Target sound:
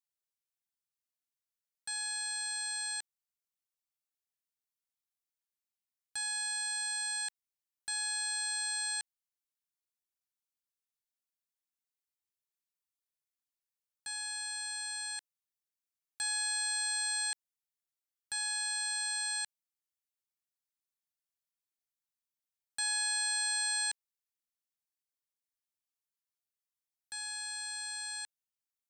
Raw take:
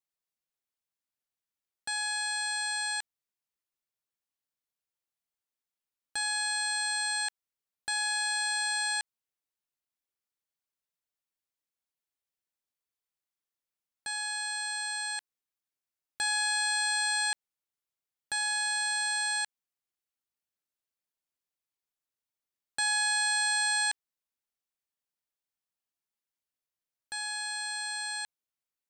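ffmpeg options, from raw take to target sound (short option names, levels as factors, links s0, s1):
-filter_complex "[0:a]equalizer=f=420:t=o:w=1.5:g=-10,acrossover=split=4500[s0][s1];[s1]acontrast=27[s2];[s0][s2]amix=inputs=2:normalize=0,volume=0.447"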